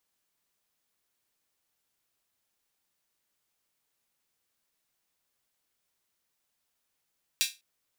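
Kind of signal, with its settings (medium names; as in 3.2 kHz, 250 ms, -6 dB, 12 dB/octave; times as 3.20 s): open hi-hat length 0.20 s, high-pass 3 kHz, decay 0.24 s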